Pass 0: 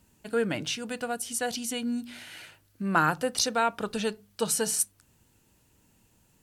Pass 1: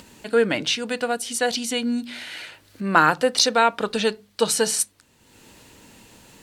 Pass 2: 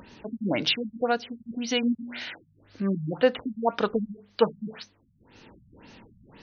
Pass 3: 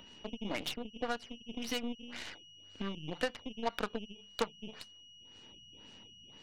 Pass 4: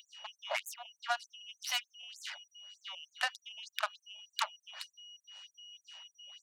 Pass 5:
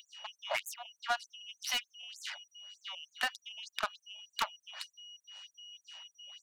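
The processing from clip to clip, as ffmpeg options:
ffmpeg -i in.wav -af "acompressor=mode=upward:threshold=-42dB:ratio=2.5,equalizer=frequency=250:width_type=o:width=1:gain=6,equalizer=frequency=500:width_type=o:width=1:gain=8,equalizer=frequency=1000:width_type=o:width=1:gain=6,equalizer=frequency=2000:width_type=o:width=1:gain=8,equalizer=frequency=4000:width_type=o:width=1:gain=10,equalizer=frequency=8000:width_type=o:width=1:gain=4,volume=-1.5dB" out.wav
ffmpeg -i in.wav -af "afftfilt=real='re*lt(b*sr/1024,200*pow(6600/200,0.5+0.5*sin(2*PI*1.9*pts/sr)))':imag='im*lt(b*sr/1024,200*pow(6600/200,0.5+0.5*sin(2*PI*1.9*pts/sr)))':win_size=1024:overlap=0.75" out.wav
ffmpeg -i in.wav -filter_complex "[0:a]aeval=exprs='val(0)+0.00631*sin(2*PI*2900*n/s)':channel_layout=same,acrossover=split=130|1000[link_01][link_02][link_03];[link_01]acompressor=threshold=-53dB:ratio=4[link_04];[link_02]acompressor=threshold=-33dB:ratio=4[link_05];[link_03]acompressor=threshold=-34dB:ratio=4[link_06];[link_04][link_05][link_06]amix=inputs=3:normalize=0,aeval=exprs='0.141*(cos(1*acos(clip(val(0)/0.141,-1,1)))-cos(1*PI/2))+0.0355*(cos(4*acos(clip(val(0)/0.141,-1,1)))-cos(4*PI/2))+0.0562*(cos(6*acos(clip(val(0)/0.141,-1,1)))-cos(6*PI/2))+0.0126*(cos(7*acos(clip(val(0)/0.141,-1,1)))-cos(7*PI/2))+0.0355*(cos(8*acos(clip(val(0)/0.141,-1,1)))-cos(8*PI/2))':channel_layout=same,volume=-2.5dB" out.wav
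ffmpeg -i in.wav -af "afftfilt=real='re*gte(b*sr/1024,530*pow(6500/530,0.5+0.5*sin(2*PI*3.3*pts/sr)))':imag='im*gte(b*sr/1024,530*pow(6500/530,0.5+0.5*sin(2*PI*3.3*pts/sr)))':win_size=1024:overlap=0.75,volume=5dB" out.wav
ffmpeg -i in.wav -af "asoftclip=type=hard:threshold=-23.5dB,volume=1.5dB" out.wav

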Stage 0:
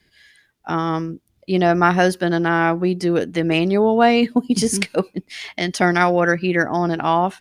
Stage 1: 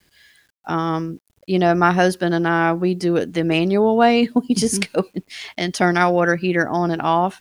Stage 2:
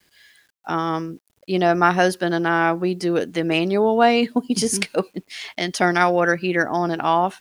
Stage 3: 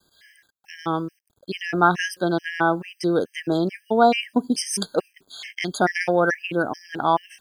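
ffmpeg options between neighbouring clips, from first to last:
ffmpeg -i in.wav -af "equalizer=frequency=2000:width=3.8:gain=-2.5,acrusher=bits=9:mix=0:aa=0.000001" out.wav
ffmpeg -i in.wav -af "lowshelf=frequency=200:gain=-8.5" out.wav
ffmpeg -i in.wav -af "afftfilt=real='re*gt(sin(2*PI*2.3*pts/sr)*(1-2*mod(floor(b*sr/1024/1600),2)),0)':imag='im*gt(sin(2*PI*2.3*pts/sr)*(1-2*mod(floor(b*sr/1024/1600),2)),0)':win_size=1024:overlap=0.75" out.wav

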